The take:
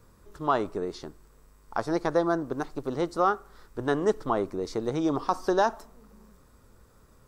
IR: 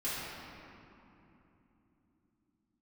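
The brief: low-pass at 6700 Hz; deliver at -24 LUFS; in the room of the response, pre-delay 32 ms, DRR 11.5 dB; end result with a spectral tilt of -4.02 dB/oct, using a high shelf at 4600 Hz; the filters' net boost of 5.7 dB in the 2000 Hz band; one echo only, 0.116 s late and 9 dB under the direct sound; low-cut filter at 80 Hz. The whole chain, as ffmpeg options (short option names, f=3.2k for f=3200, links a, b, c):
-filter_complex "[0:a]highpass=80,lowpass=6.7k,equalizer=f=2k:t=o:g=7,highshelf=f=4.6k:g=6,aecho=1:1:116:0.355,asplit=2[a][b];[1:a]atrim=start_sample=2205,adelay=32[c];[b][c]afir=irnorm=-1:irlink=0,volume=-17.5dB[d];[a][d]amix=inputs=2:normalize=0,volume=3dB"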